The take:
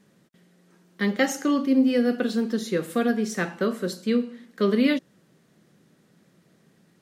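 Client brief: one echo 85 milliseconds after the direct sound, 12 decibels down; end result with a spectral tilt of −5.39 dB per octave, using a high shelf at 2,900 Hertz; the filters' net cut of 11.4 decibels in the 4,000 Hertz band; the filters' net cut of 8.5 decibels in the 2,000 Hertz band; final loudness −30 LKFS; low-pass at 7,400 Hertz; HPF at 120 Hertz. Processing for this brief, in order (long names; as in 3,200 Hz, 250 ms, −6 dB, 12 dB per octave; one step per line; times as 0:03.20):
high-pass filter 120 Hz
low-pass filter 7,400 Hz
parametric band 2,000 Hz −7 dB
high-shelf EQ 2,900 Hz −6.5 dB
parametric band 4,000 Hz −7 dB
single-tap delay 85 ms −12 dB
level −4.5 dB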